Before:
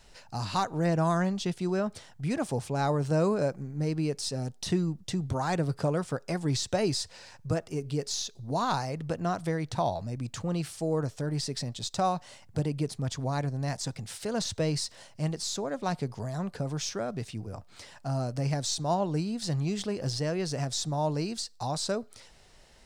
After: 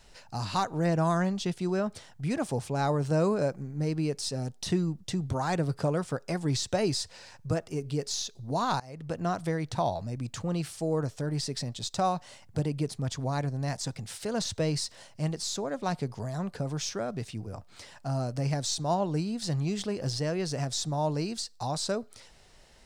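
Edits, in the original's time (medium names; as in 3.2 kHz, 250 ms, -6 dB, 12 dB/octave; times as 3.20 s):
8.80–9.21 s: fade in, from -22 dB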